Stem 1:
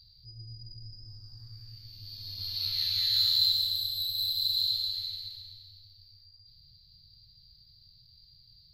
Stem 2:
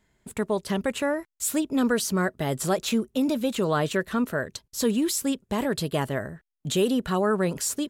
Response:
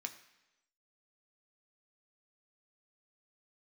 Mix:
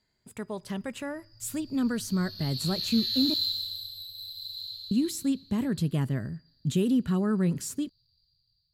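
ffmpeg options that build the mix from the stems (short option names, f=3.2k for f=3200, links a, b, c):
-filter_complex "[0:a]bandreject=f=2.1k:w=7,dynaudnorm=f=450:g=5:m=7.5dB,volume=-10.5dB,afade=t=in:st=1.13:d=0.44:silence=0.281838,afade=t=out:st=3.33:d=0.77:silence=0.421697[a];[1:a]highpass=110,asubboost=boost=9.5:cutoff=200,volume=-10dB,asplit=3[b][c][d];[b]atrim=end=3.34,asetpts=PTS-STARTPTS,afade=t=out:st=3.336:d=0.004:c=hsin[e];[c]atrim=start=3.34:end=4.91,asetpts=PTS-STARTPTS,volume=0[f];[d]atrim=start=4.91,asetpts=PTS-STARTPTS,afade=t=in:d=0.004:c=hsin[g];[e][f][g]concat=n=3:v=0:a=1,asplit=2[h][i];[i]volume=-12dB[j];[2:a]atrim=start_sample=2205[k];[j][k]afir=irnorm=-1:irlink=0[l];[a][h][l]amix=inputs=3:normalize=0"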